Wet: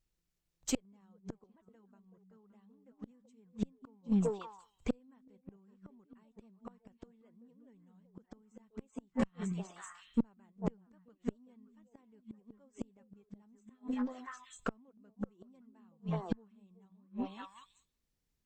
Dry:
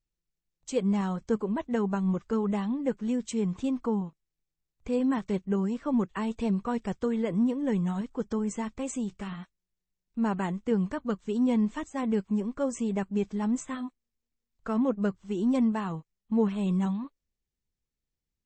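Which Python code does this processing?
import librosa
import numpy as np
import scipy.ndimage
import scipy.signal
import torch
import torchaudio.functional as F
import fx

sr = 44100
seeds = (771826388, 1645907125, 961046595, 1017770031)

y = fx.echo_stepped(x, sr, ms=189, hz=200.0, octaves=1.4, feedback_pct=70, wet_db=-2.0)
y = fx.gate_flip(y, sr, shuts_db=-23.0, range_db=-40)
y = fx.cheby_harmonics(y, sr, harmonics=(4,), levels_db=(-19,), full_scale_db=-22.5)
y = y * librosa.db_to_amplitude(3.5)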